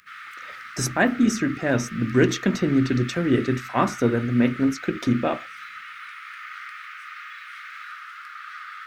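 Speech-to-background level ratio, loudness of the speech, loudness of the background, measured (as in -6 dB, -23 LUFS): 14.5 dB, -23.0 LUFS, -37.5 LUFS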